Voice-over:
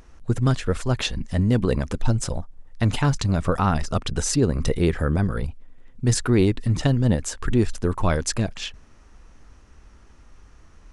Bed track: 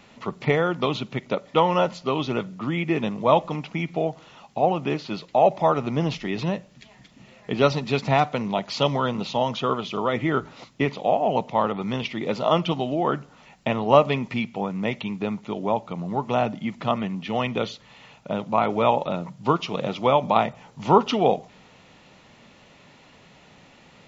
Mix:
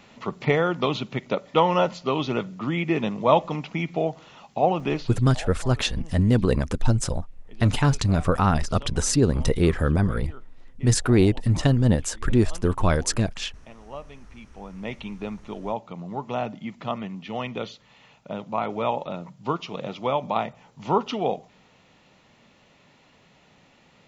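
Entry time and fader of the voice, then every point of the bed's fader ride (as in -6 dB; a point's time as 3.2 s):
4.80 s, +0.5 dB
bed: 5.01 s 0 dB
5.27 s -22.5 dB
14.27 s -22.5 dB
14.93 s -5.5 dB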